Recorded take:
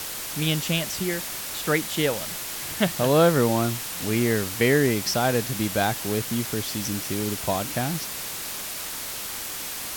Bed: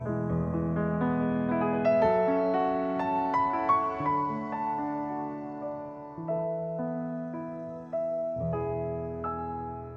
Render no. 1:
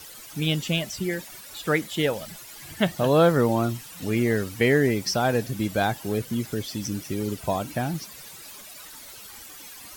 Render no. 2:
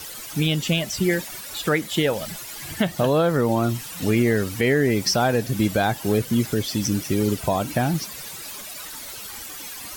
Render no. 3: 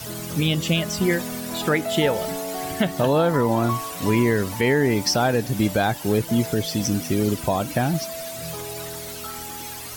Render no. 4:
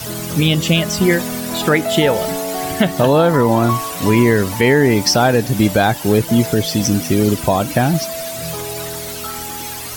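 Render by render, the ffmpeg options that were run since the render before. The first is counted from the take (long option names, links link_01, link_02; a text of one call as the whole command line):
ffmpeg -i in.wav -af "afftdn=noise_reduction=14:noise_floor=-33" out.wav
ffmpeg -i in.wav -af "alimiter=limit=-17dB:level=0:latency=1:release=231,acontrast=82" out.wav
ffmpeg -i in.wav -i bed.wav -filter_complex "[1:a]volume=-4dB[link_01];[0:a][link_01]amix=inputs=2:normalize=0" out.wav
ffmpeg -i in.wav -af "volume=7dB,alimiter=limit=-3dB:level=0:latency=1" out.wav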